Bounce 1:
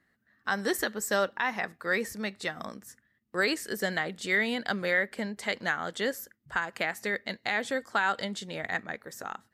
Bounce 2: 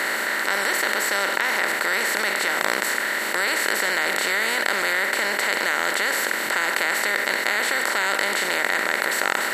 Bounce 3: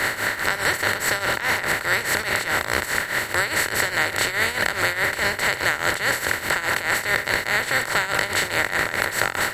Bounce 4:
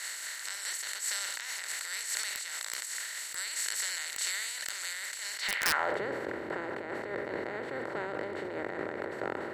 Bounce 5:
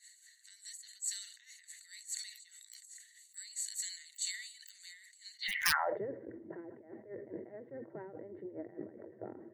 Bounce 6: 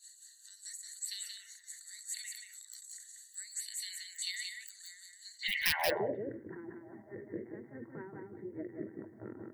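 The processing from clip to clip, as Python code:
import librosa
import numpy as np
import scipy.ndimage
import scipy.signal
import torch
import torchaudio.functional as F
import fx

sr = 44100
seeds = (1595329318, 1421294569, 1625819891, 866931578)

y1 = fx.bin_compress(x, sr, power=0.2)
y1 = fx.highpass(y1, sr, hz=990.0, slope=6)
y1 = fx.env_flatten(y1, sr, amount_pct=70)
y1 = F.gain(torch.from_numpy(y1), -2.5).numpy()
y2 = fx.octave_divider(y1, sr, octaves=2, level_db=1.0)
y2 = fx.leveller(y2, sr, passes=1)
y2 = fx.tremolo_shape(y2, sr, shape='triangle', hz=4.8, depth_pct=80)
y3 = fx.filter_sweep_bandpass(y2, sr, from_hz=7000.0, to_hz=360.0, start_s=5.33, end_s=6.01, q=1.6)
y3 = (np.mod(10.0 ** (15.5 / 20.0) * y3 + 1.0, 2.0) - 1.0) / 10.0 ** (15.5 / 20.0)
y3 = fx.sustainer(y3, sr, db_per_s=23.0)
y3 = F.gain(torch.from_numpy(y3), -4.5).numpy()
y4 = fx.bin_expand(y3, sr, power=3.0)
y4 = F.gain(torch.from_numpy(y4), 2.5).numpy()
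y5 = fx.env_phaser(y4, sr, low_hz=340.0, high_hz=1300.0, full_db=-35.5)
y5 = np.clip(y5, -10.0 ** (-27.0 / 20.0), 10.0 ** (-27.0 / 20.0))
y5 = y5 + 10.0 ** (-4.5 / 20.0) * np.pad(y5, (int(179 * sr / 1000.0), 0))[:len(y5)]
y5 = F.gain(torch.from_numpy(y5), 5.0).numpy()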